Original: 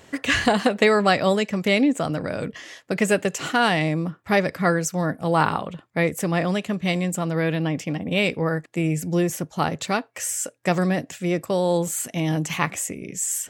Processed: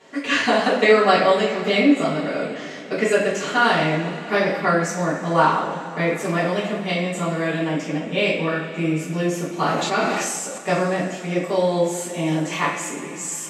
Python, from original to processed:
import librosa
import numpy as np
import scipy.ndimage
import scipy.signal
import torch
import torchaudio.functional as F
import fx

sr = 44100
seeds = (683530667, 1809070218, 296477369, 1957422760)

y = scipy.signal.sosfilt(scipy.signal.butter(2, 220.0, 'highpass', fs=sr, output='sos'), x)
y = fx.air_absorb(y, sr, metres=66.0)
y = fx.rev_double_slope(y, sr, seeds[0], early_s=0.5, late_s=4.2, knee_db=-18, drr_db=-9.5)
y = fx.sustainer(y, sr, db_per_s=23.0, at=(9.6, 10.58))
y = F.gain(torch.from_numpy(y), -6.5).numpy()